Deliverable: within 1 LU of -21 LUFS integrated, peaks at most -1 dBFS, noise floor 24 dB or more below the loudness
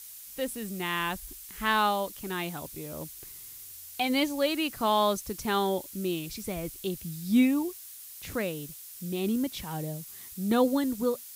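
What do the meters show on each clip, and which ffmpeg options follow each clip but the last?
noise floor -46 dBFS; noise floor target -54 dBFS; loudness -29.5 LUFS; peak level -12.0 dBFS; loudness target -21.0 LUFS
-> -af "afftdn=nr=8:nf=-46"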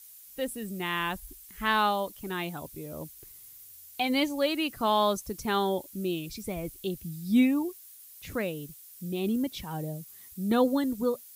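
noise floor -50 dBFS; noise floor target -54 dBFS
-> -af "afftdn=nr=6:nf=-50"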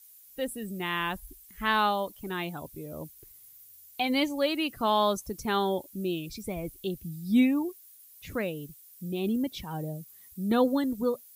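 noise floor -54 dBFS; loudness -29.5 LUFS; peak level -12.5 dBFS; loudness target -21.0 LUFS
-> -af "volume=2.66"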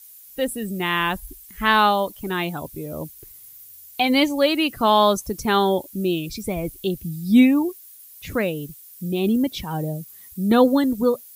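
loudness -21.0 LUFS; peak level -4.0 dBFS; noise floor -45 dBFS

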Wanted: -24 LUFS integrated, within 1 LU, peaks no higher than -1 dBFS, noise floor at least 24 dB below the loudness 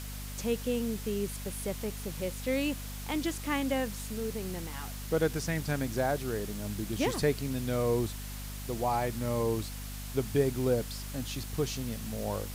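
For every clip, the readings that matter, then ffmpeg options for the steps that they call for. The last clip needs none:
hum 50 Hz; highest harmonic 250 Hz; hum level -38 dBFS; noise floor -40 dBFS; noise floor target -57 dBFS; loudness -33.0 LUFS; peak level -15.0 dBFS; loudness target -24.0 LUFS
-> -af "bandreject=f=50:t=h:w=6,bandreject=f=100:t=h:w=6,bandreject=f=150:t=h:w=6,bandreject=f=200:t=h:w=6,bandreject=f=250:t=h:w=6"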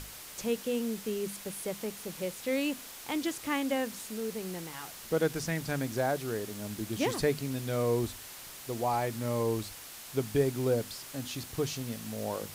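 hum not found; noise floor -47 dBFS; noise floor target -58 dBFS
-> -af "afftdn=nr=11:nf=-47"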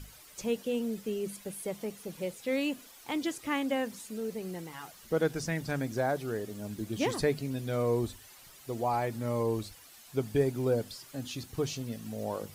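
noise floor -54 dBFS; noise floor target -58 dBFS
-> -af "afftdn=nr=6:nf=-54"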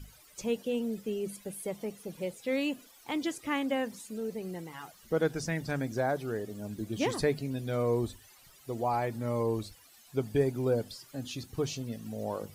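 noise floor -58 dBFS; loudness -33.5 LUFS; peak level -16.0 dBFS; loudness target -24.0 LUFS
-> -af "volume=2.99"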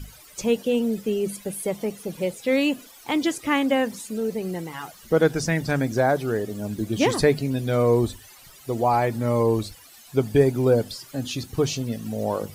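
loudness -24.0 LUFS; peak level -6.5 dBFS; noise floor -49 dBFS

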